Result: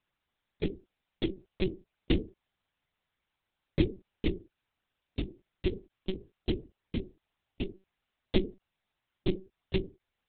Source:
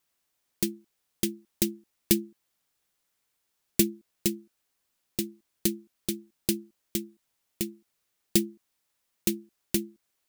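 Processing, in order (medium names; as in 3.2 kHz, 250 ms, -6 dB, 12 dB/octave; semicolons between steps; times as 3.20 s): whisper effect; monotone LPC vocoder at 8 kHz 190 Hz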